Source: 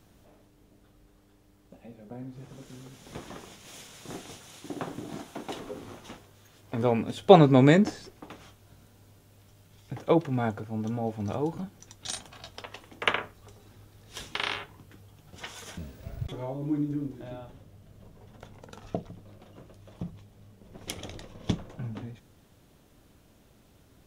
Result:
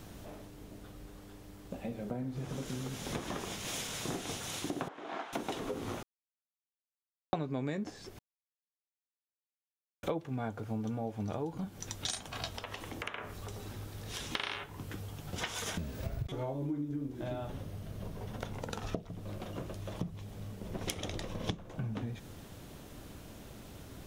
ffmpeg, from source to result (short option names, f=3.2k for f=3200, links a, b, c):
-filter_complex "[0:a]asettb=1/sr,asplit=3[a][b][c];[a]atrim=end=4.884[d];[b]atrim=start=4.88:end=5.33,asetpts=PTS-STARTPTS,afade=t=in:d=0.004:c=qsin,afade=t=out:st=0.446:d=0.004:c=qsin,highpass=760,lowpass=2.1k[e];[c]atrim=start=5.326[f];[d][e]acrossfade=d=0.004:c1=hsin:c2=qsin[g];[g][f]acrossfade=d=0.004:c1=qsin:c2=hsin,asettb=1/sr,asplit=3[h][i][j];[h]atrim=end=12.534[k];[i]atrim=start=12.53:end=14.31,asetpts=PTS-STARTPTS,afade=t=in:d=0.004:c=qsin,afade=t=out:st=1.776:d=0.004:c=qsin,acompressor=threshold=-48dB:ratio=4:attack=3.2:release=140:knee=1:detection=peak[l];[j]atrim=start=14.306[m];[k][l]acrossfade=d=0.004:c1=hsin:c2=qsin[n];[n][m]acrossfade=d=0.004:c1=qsin:c2=hsin,asettb=1/sr,asplit=3[o][p][q];[o]atrim=end=17.484[r];[p]atrim=start=17.48:end=18.52,asetpts=PTS-STARTPTS,afade=t=in:d=0.004:c=qsin,afade=t=out:st=1.036:d=0.004:c=qsin,bandreject=f=7.4k:w=12[s];[q]atrim=start=18.516[t];[r][s]acrossfade=d=0.004:c1=hsin:c2=qsin[u];[u][t]acrossfade=d=0.004:c1=qsin:c2=hsin,asplit=5[v][w][x][y][z];[v]atrim=end=6.03,asetpts=PTS-STARTPTS,afade=t=out:st=6.026:d=0.004:c=hsin[aa];[w]atrim=start=6.03:end=7.33,asetpts=PTS-STARTPTS,volume=0[ab];[x]atrim=start=7.33:end=8.19,asetpts=PTS-STARTPTS,afade=t=in:d=0.004:c=hsin,afade=t=out:st=0.856:d=0.004:c=hsin[ac];[y]atrim=start=8.19:end=10.03,asetpts=PTS-STARTPTS,volume=0[ad];[z]atrim=start=10.03,asetpts=PTS-STARTPTS,afade=t=in:d=0.004:c=hsin[ae];[aa][ab][ac][ad][ae]concat=n=5:v=0:a=1,acompressor=threshold=-44dB:ratio=8,volume=10dB"